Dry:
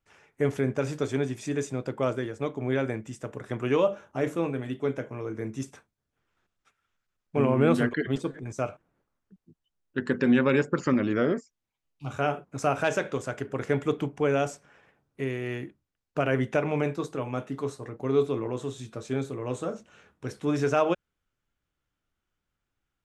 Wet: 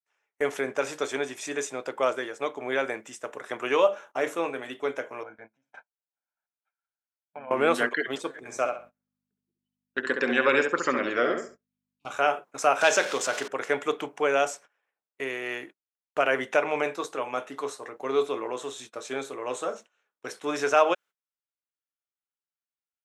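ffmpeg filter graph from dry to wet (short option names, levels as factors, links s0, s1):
-filter_complex "[0:a]asettb=1/sr,asplit=3[s0][s1][s2];[s0]atrim=end=5.234[s3];[s1]atrim=start=5.23:end=7.51,asetpts=PTS-STARTPTS,afade=t=in:d=0.004:c=qsin,afade=t=out:st=2.276:d=0.004:c=qsin,lowpass=1800,aecho=1:1:1.3:0.96,atrim=end_sample=100548,acompressor=threshold=0.0126:ratio=5:attack=3.2:release=140:knee=1:detection=peak[s4];[s2]atrim=start=7.506[s5];[s3][s4]acrossfade=d=0.004:c1=hsin:c2=qsin[s6];[s6][s5]acrossfade=d=0.004:c1=qsin:c2=hsin,asettb=1/sr,asplit=3[s7][s8][s9];[s7]atrim=end=8.374[s10];[s8]atrim=start=8.37:end=12.1,asetpts=PTS-STARTPTS,afade=t=in:d=0.004:c=qsin,afade=t=out:st=3.726:d=0.004:c=qsin,bandreject=f=910:w=12,asplit=2[s11][s12];[s12]adelay=67,lowpass=f=3100:p=1,volume=0.531,asplit=2[s13][s14];[s14]adelay=67,lowpass=f=3100:p=1,volume=0.29,asplit=2[s15][s16];[s16]adelay=67,lowpass=f=3100:p=1,volume=0.29,asplit=2[s17][s18];[s18]adelay=67,lowpass=f=3100:p=1,volume=0.29[s19];[s11][s13][s15][s17][s19]amix=inputs=5:normalize=0,atrim=end_sample=164493,aeval=exprs='val(0)+0.00891*(sin(2*PI*50*n/s)+sin(2*PI*2*50*n/s)/2+sin(2*PI*3*50*n/s)/3+sin(2*PI*4*50*n/s)/4+sin(2*PI*5*50*n/s)/5)':c=same[s20];[s9]atrim=start=12.096[s21];[s10][s20]acrossfade=d=0.004:c1=hsin:c2=qsin[s22];[s22][s21]acrossfade=d=0.004:c1=qsin:c2=hsin,asettb=1/sr,asplit=3[s23][s24][s25];[s23]atrim=end=12.814[s26];[s24]atrim=start=12.81:end=13.48,asetpts=PTS-STARTPTS,afade=t=in:d=0.004:c=qsin,afade=t=out:st=0.666:d=0.004:c=qsin,aeval=exprs='val(0)+0.5*0.0158*sgn(val(0))':c=same,highpass=160,lowpass=5100,bass=f=250:g=6,treble=f=4000:g=12[s27];[s25]atrim=start=13.476[s28];[s26][s27]acrossfade=d=0.004:c1=hsin:c2=qsin[s29];[s29][s28]acrossfade=d=0.004:c1=qsin:c2=hsin,highpass=600,bandreject=f=4700:w=20,agate=range=0.0631:threshold=0.00282:ratio=16:detection=peak,volume=2"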